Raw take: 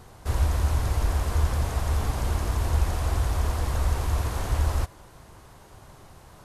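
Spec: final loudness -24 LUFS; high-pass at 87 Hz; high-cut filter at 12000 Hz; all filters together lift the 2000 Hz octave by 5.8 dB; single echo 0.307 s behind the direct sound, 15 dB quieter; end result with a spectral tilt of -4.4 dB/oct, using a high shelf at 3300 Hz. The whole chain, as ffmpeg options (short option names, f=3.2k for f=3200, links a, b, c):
-af "highpass=87,lowpass=12k,equalizer=f=2k:t=o:g=5.5,highshelf=f=3.3k:g=6.5,aecho=1:1:307:0.178,volume=5dB"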